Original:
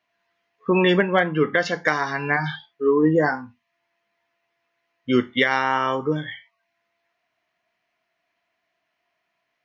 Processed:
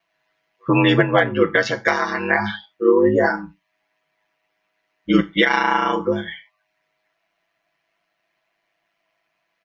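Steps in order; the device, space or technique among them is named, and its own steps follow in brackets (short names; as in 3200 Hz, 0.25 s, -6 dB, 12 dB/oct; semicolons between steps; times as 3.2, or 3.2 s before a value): ring-modulated robot voice (ring modulator 52 Hz; comb 6 ms, depth 74%); gain +4 dB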